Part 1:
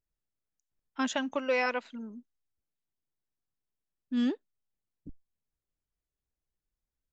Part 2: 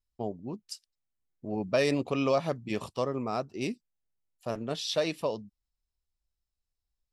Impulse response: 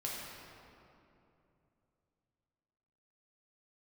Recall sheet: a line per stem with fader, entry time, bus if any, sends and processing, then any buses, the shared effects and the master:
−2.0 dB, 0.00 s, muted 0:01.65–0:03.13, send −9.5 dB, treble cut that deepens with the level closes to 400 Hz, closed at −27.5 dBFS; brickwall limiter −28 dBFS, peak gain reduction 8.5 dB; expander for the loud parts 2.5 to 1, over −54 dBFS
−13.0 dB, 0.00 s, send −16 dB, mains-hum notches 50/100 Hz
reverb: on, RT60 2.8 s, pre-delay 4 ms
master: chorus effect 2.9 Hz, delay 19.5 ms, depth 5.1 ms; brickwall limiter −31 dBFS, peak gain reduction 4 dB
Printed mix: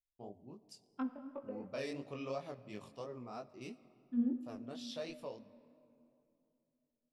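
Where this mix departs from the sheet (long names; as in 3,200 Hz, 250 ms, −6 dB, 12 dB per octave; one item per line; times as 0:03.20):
stem 1: missing brickwall limiter −28 dBFS, peak gain reduction 8.5 dB
master: missing brickwall limiter −31 dBFS, peak gain reduction 4 dB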